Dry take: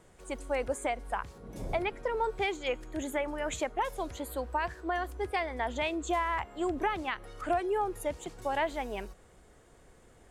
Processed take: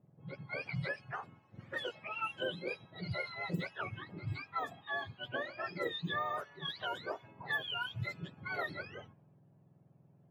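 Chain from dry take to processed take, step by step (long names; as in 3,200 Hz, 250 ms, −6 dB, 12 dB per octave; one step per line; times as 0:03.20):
frequency axis turned over on the octave scale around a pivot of 1,100 Hz
low-pass that shuts in the quiet parts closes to 550 Hz, open at −28.5 dBFS
level −4 dB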